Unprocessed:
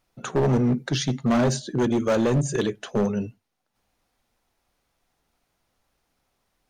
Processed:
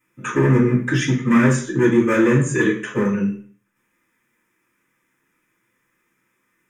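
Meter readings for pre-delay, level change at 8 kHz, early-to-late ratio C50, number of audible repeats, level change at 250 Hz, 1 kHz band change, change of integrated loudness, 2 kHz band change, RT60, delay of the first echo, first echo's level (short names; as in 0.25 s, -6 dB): 3 ms, +2.5 dB, 7.0 dB, none, +6.5 dB, +3.5 dB, +5.5 dB, +12.0 dB, 0.50 s, none, none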